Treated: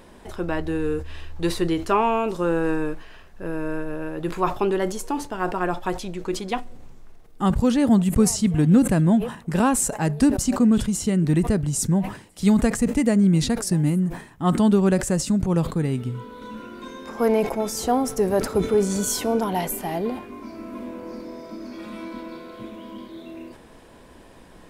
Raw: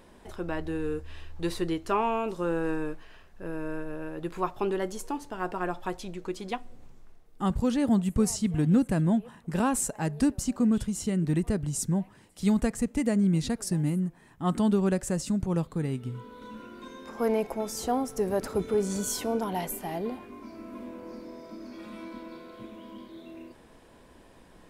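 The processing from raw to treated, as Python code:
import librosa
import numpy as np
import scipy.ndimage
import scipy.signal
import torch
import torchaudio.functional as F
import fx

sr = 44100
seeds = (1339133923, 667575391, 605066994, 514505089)

y = fx.sustainer(x, sr, db_per_s=120.0)
y = y * 10.0 ** (6.5 / 20.0)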